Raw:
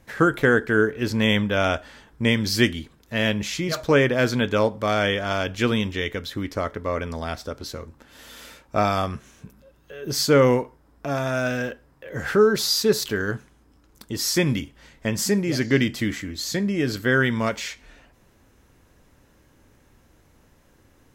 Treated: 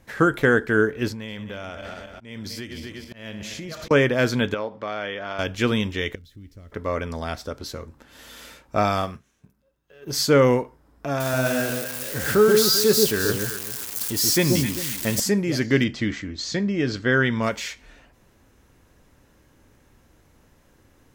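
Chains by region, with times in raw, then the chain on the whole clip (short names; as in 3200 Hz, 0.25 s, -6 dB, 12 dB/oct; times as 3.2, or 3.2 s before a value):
1.08–3.91 regenerating reverse delay 0.123 s, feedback 62%, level -13 dB + compressor 12:1, threshold -30 dBFS + auto swell 0.158 s
4.54–5.39 HPF 390 Hz 6 dB/oct + compressor 2:1, threshold -27 dBFS + air absorption 180 m
6.15–6.72 zero-crossing step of -40 dBFS + passive tone stack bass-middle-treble 10-0-1
8.97–10.13 G.711 law mismatch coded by A + doubler 48 ms -14 dB + upward expander, over -40 dBFS
11.2–15.2 switching spikes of -19.5 dBFS + echo with dull and thin repeats by turns 0.131 s, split 920 Hz, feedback 51%, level -2 dB
15.84–17.43 LPF 6500 Hz 24 dB/oct + mismatched tape noise reduction decoder only
whole clip: dry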